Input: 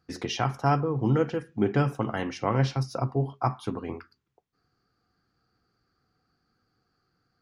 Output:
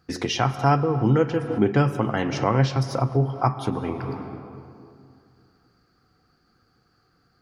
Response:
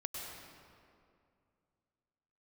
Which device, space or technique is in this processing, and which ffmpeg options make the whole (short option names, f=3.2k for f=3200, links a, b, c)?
ducked reverb: -filter_complex "[0:a]asplit=3[a][b][c];[1:a]atrim=start_sample=2205[d];[b][d]afir=irnorm=-1:irlink=0[e];[c]apad=whole_len=326948[f];[e][f]sidechaincompress=threshold=-35dB:ratio=10:attack=12:release=255,volume=0.5dB[g];[a][g]amix=inputs=2:normalize=0,asettb=1/sr,asplit=3[h][i][j];[h]atrim=end=2.104[k];[i]atrim=start=2.1:end=2.77,asetpts=PTS-STARTPTS,afade=t=in:d=0.004:c=qsin,afade=t=out:st=0.666:d=0.004:c=qsin,lowpass=f=8.8k:w=0.5412,lowpass=f=8.8k:w=1.3066[l];[j]atrim=start=2.766[m];[k][l]acrossfade=d=0.004:c1=hsin:c2=qsin[n];[n][m]acrossfade=d=0.004:c1=qsin:c2=hsin,volume=3.5dB"